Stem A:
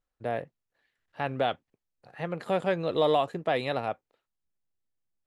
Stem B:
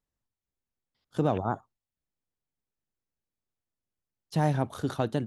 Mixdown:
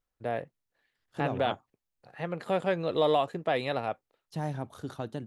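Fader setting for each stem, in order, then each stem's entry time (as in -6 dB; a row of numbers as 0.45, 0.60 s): -1.0, -8.0 dB; 0.00, 0.00 s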